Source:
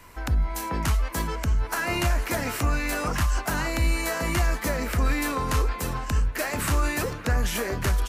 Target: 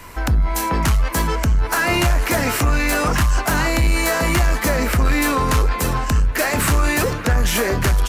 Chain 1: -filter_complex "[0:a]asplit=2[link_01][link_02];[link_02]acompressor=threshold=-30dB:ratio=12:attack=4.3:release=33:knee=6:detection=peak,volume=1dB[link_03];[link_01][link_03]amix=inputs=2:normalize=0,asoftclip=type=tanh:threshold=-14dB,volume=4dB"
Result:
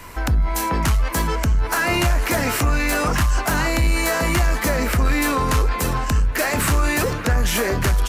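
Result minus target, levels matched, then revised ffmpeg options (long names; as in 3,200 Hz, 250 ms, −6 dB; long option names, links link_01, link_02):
downward compressor: peak gain reduction +8 dB
-filter_complex "[0:a]asplit=2[link_01][link_02];[link_02]acompressor=threshold=-21dB:ratio=12:attack=4.3:release=33:knee=6:detection=peak,volume=1dB[link_03];[link_01][link_03]amix=inputs=2:normalize=0,asoftclip=type=tanh:threshold=-14dB,volume=4dB"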